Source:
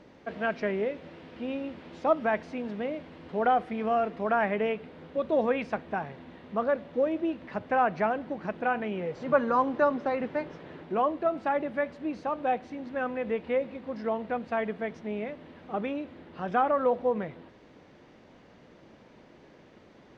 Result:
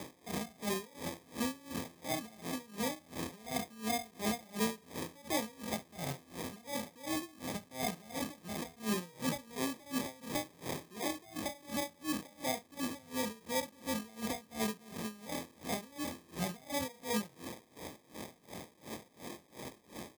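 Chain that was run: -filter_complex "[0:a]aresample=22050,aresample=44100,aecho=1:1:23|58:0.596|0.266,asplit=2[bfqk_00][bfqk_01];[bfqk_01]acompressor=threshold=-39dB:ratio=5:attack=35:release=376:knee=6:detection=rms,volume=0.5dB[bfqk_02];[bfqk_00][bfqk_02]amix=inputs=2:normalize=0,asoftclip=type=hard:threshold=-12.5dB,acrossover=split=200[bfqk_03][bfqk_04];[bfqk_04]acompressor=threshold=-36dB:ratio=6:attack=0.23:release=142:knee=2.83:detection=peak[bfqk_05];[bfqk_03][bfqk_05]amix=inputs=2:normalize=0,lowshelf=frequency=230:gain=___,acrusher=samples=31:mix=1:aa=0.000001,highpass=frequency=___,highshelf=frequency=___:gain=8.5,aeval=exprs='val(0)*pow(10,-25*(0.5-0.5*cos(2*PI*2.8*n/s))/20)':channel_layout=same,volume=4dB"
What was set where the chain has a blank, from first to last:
-2, 70, 4000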